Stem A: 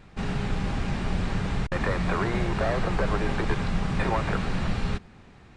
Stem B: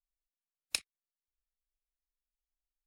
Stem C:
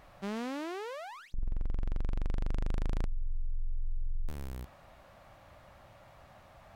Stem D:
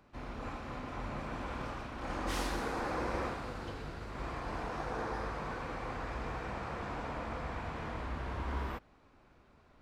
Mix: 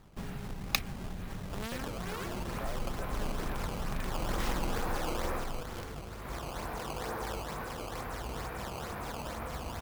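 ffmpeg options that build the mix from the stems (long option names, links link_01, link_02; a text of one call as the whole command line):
ffmpeg -i stem1.wav -i stem2.wav -i stem3.wav -i stem4.wav -filter_complex "[0:a]acompressor=threshold=-29dB:ratio=6,volume=-7dB[link_01];[1:a]equalizer=frequency=970:width=0.33:gain=9.5,volume=0dB[link_02];[2:a]tiltshelf=frequency=1400:gain=-8.5,aecho=1:1:4.5:0.6,adelay=1300,volume=-2dB[link_03];[3:a]equalizer=frequency=290:width_type=o:width=0.22:gain=-5,adelay=2100,volume=0.5dB[link_04];[link_01][link_02][link_03][link_04]amix=inputs=4:normalize=0,acrusher=samples=14:mix=1:aa=0.000001:lfo=1:lforange=22.4:lforate=2.2" out.wav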